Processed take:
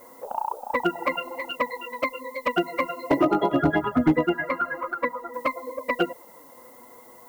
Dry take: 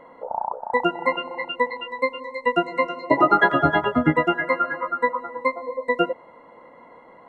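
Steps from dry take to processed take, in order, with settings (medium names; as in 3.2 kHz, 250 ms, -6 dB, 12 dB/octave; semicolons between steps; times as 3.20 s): touch-sensitive flanger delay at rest 9.1 ms, full sweep at -14 dBFS; peaking EQ 300 Hz +5 dB 0.34 oct; added noise violet -53 dBFS; 3.23–5.34 s: treble shelf 3.1 kHz -9 dB; hard clipper -12.5 dBFS, distortion -17 dB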